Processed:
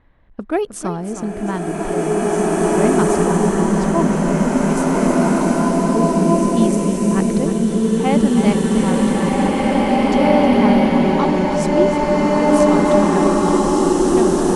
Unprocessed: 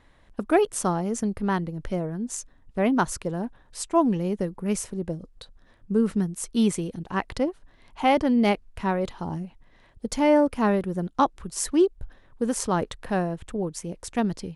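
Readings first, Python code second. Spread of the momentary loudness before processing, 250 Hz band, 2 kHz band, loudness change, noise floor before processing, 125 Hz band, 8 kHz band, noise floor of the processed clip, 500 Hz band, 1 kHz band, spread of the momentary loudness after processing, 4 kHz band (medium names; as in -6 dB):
12 LU, +11.0 dB, +8.5 dB, +10.0 dB, -57 dBFS, +11.0 dB, +6.0 dB, -28 dBFS, +10.5 dB, +9.0 dB, 8 LU, +8.0 dB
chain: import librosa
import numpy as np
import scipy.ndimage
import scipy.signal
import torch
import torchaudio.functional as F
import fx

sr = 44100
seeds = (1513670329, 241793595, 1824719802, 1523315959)

p1 = fx.env_lowpass(x, sr, base_hz=2400.0, full_db=-21.0)
p2 = fx.low_shelf(p1, sr, hz=270.0, db=5.0)
p3 = p2 + fx.echo_single(p2, sr, ms=312, db=-10.5, dry=0)
p4 = fx.rev_bloom(p3, sr, seeds[0], attack_ms=2370, drr_db=-9.0)
y = p4 * 10.0 ** (-1.0 / 20.0)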